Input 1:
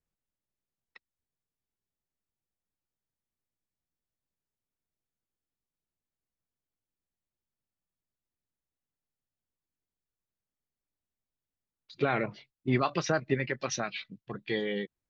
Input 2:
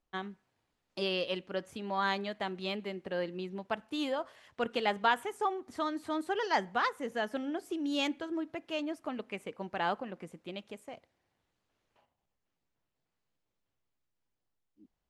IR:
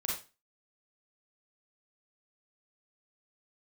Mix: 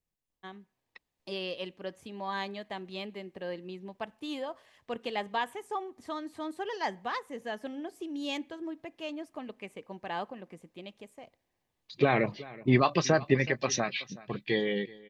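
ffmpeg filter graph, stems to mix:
-filter_complex "[0:a]volume=0dB,asplit=3[a][b][c];[b]volume=-20dB[d];[1:a]adelay=300,volume=2dB[e];[c]apad=whole_len=678850[f];[e][f]sidechaingate=range=-9dB:threshold=-52dB:ratio=16:detection=peak[g];[d]aecho=0:1:374:1[h];[a][g][h]amix=inputs=3:normalize=0,bandreject=f=1.4k:w=5.9,dynaudnorm=f=240:g=9:m=4dB"

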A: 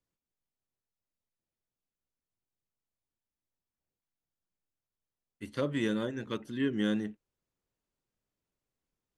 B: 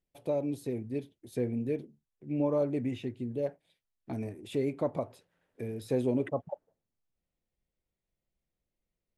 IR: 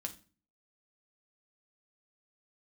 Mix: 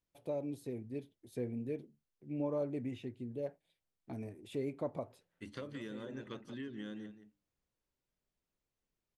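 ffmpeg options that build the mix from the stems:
-filter_complex "[0:a]lowpass=8k,bandreject=f=50:t=h:w=6,bandreject=f=100:t=h:w=6,bandreject=f=150:t=h:w=6,bandreject=f=200:t=h:w=6,bandreject=f=250:t=h:w=6,bandreject=f=300:t=h:w=6,acompressor=threshold=-39dB:ratio=6,volume=-3dB,asplit=3[a][b][c];[b]volume=-12dB[d];[1:a]acontrast=33,volume=-12.5dB[e];[c]apad=whole_len=404473[f];[e][f]sidechaincompress=threshold=-59dB:ratio=8:attack=16:release=173[g];[d]aecho=0:1:174:1[h];[a][g][h]amix=inputs=3:normalize=0"

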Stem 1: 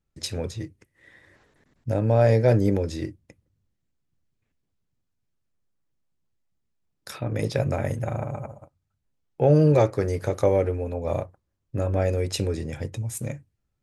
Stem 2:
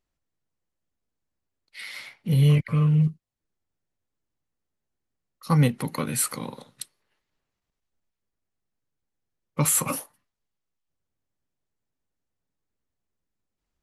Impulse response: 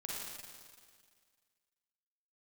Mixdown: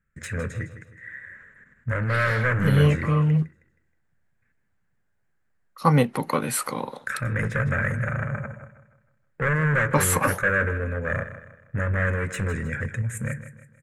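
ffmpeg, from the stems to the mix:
-filter_complex "[0:a]volume=24dB,asoftclip=hard,volume=-24dB,firequalizer=gain_entry='entry(210,0);entry(310,-15);entry(510,-10);entry(760,-23);entry(1600,10);entry(2900,-9);entry(4800,-22);entry(7300,-2);entry(11000,-9)':delay=0.05:min_phase=1,volume=1.5dB,asplit=2[a][b];[b]volume=-12.5dB[c];[1:a]adelay=350,volume=-3dB[d];[c]aecho=0:1:158|316|474|632|790|948:1|0.4|0.16|0.064|0.0256|0.0102[e];[a][d][e]amix=inputs=3:normalize=0,equalizer=f=800:t=o:w=2.9:g=11.5"

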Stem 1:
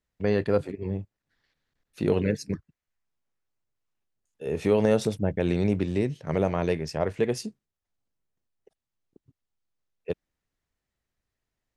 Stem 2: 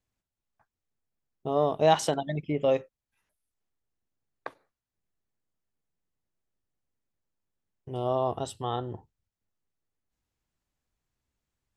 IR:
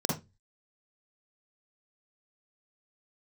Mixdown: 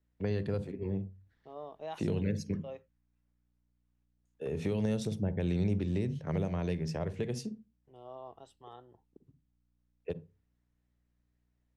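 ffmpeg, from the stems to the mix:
-filter_complex "[0:a]volume=-2dB,asplit=2[a][b];[b]volume=-23dB[c];[1:a]lowshelf=f=260:g=-10,aeval=exprs='val(0)+0.00126*(sin(2*PI*60*n/s)+sin(2*PI*2*60*n/s)/2+sin(2*PI*3*60*n/s)/3+sin(2*PI*4*60*n/s)/4+sin(2*PI*5*60*n/s)/5)':c=same,volume=-17.5dB[d];[2:a]atrim=start_sample=2205[e];[c][e]afir=irnorm=-1:irlink=0[f];[a][d][f]amix=inputs=3:normalize=0,highshelf=f=4.4k:g=-9,acrossover=split=180|3000[g][h][i];[h]acompressor=threshold=-35dB:ratio=6[j];[g][j][i]amix=inputs=3:normalize=0"

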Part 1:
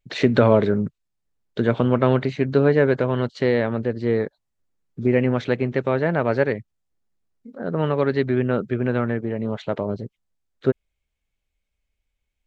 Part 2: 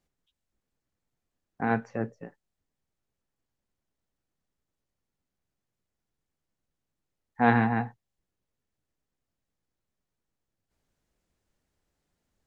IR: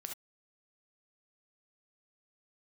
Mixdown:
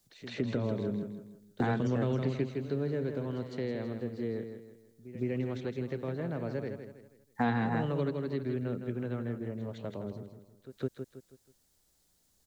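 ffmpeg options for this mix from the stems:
-filter_complex "[0:a]aemphasis=mode=production:type=50fm,acrossover=split=410|3000[a][b][c];[b]acompressor=threshold=-36dB:ratio=2[d];[a][d][c]amix=inputs=3:normalize=0,adynamicequalizer=threshold=0.01:dfrequency=1500:dqfactor=0.7:tfrequency=1500:tqfactor=0.7:attack=5:release=100:ratio=0.375:range=3:mode=cutabove:tftype=highshelf,volume=-4dB,asplit=2[e][f];[f]volume=-7.5dB[g];[1:a]aexciter=amount=3.5:drive=5.7:freq=3.5k,volume=2dB,asplit=2[h][i];[i]apad=whole_len=549884[j];[e][j]sidechaingate=range=-23dB:threshold=-59dB:ratio=16:detection=peak[k];[g]aecho=0:1:161|322|483|644|805:1|0.38|0.144|0.0549|0.0209[l];[k][h][l]amix=inputs=3:normalize=0,acrossover=split=280|3200[m][n][o];[m]acompressor=threshold=-31dB:ratio=4[p];[n]acompressor=threshold=-32dB:ratio=4[q];[o]acompressor=threshold=-56dB:ratio=4[r];[p][q][r]amix=inputs=3:normalize=0"

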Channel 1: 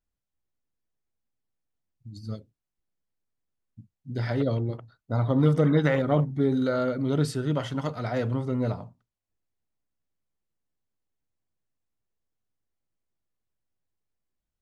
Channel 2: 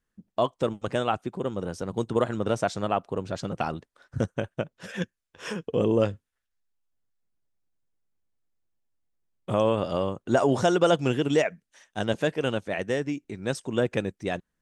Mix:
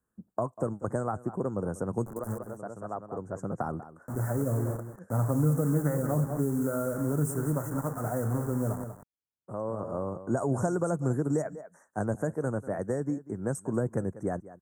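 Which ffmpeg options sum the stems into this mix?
-filter_complex "[0:a]highpass=55,highshelf=f=3.7k:g=7,acrusher=bits=5:mix=0:aa=0.000001,volume=-1.5dB,asplit=3[a][b][c];[b]volume=-11dB[d];[1:a]highpass=59,volume=2dB,asplit=2[e][f];[f]volume=-20dB[g];[c]apad=whole_len=644651[h];[e][h]sidechaincompress=threshold=-48dB:ratio=16:attack=10:release=1090[i];[d][g]amix=inputs=2:normalize=0,aecho=0:1:192:1[j];[a][i][j]amix=inputs=3:normalize=0,acrossover=split=180|3000[k][l][m];[l]acompressor=threshold=-28dB:ratio=6[n];[k][n][m]amix=inputs=3:normalize=0,asuperstop=centerf=3400:order=8:qfactor=0.58"

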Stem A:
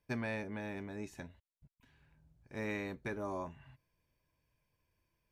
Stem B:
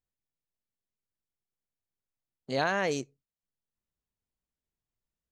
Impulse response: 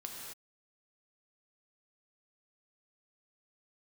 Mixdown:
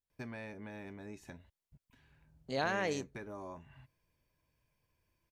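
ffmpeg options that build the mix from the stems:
-filter_complex "[0:a]acompressor=threshold=-49dB:ratio=2,adelay=100,volume=1dB[a];[1:a]volume=-5.5dB[b];[a][b]amix=inputs=2:normalize=0"

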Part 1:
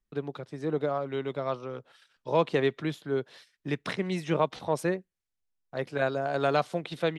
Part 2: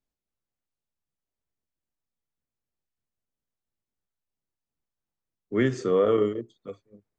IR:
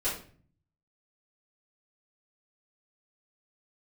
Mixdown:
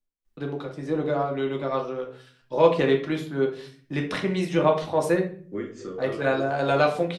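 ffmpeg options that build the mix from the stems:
-filter_complex "[0:a]adelay=250,volume=0dB,asplit=2[a][b];[b]volume=-5.5dB[c];[1:a]alimiter=limit=-19.5dB:level=0:latency=1:release=214,tremolo=f=3.6:d=0.88,volume=-7.5dB,asplit=2[d][e];[e]volume=-3.5dB[f];[2:a]atrim=start_sample=2205[g];[c][f]amix=inputs=2:normalize=0[h];[h][g]afir=irnorm=-1:irlink=0[i];[a][d][i]amix=inputs=3:normalize=0"

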